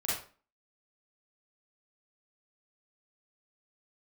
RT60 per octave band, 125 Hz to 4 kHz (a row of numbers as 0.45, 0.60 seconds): 0.35, 0.45, 0.40, 0.40, 0.35, 0.30 seconds